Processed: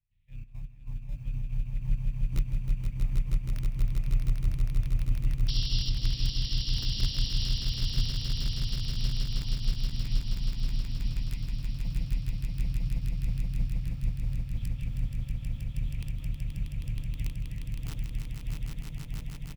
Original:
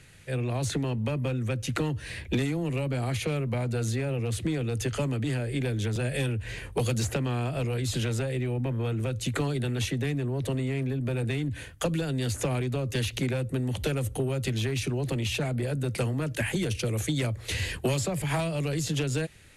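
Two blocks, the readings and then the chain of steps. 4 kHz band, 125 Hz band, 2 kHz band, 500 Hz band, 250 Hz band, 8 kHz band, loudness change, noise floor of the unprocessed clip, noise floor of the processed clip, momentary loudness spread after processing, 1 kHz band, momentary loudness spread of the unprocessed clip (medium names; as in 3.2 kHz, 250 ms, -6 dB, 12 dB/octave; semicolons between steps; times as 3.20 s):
0.0 dB, -4.5 dB, -14.0 dB, -27.0 dB, -12.5 dB, -12.0 dB, -4.0 dB, -43 dBFS, -41 dBFS, 8 LU, -19.0 dB, 2 LU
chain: octave divider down 2 oct, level +4 dB; distance through air 330 m; static phaser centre 1.5 kHz, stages 6; LFO low-pass saw down 0.83 Hz 610–6100 Hz; in parallel at -11.5 dB: sample-rate reducer 1.5 kHz, jitter 0%; on the sum: delay 165 ms -13.5 dB; trance gate ".xxx.x..x" 138 bpm -12 dB; integer overflow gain 15 dB; painted sound noise, 5.48–5.90 s, 2.7–5.7 kHz -21 dBFS; amplifier tone stack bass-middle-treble 6-0-2; on a send: echo with a slow build-up 159 ms, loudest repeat 8, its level -4 dB; on the sum: upward expansion 1.5:1, over -48 dBFS; trim +3 dB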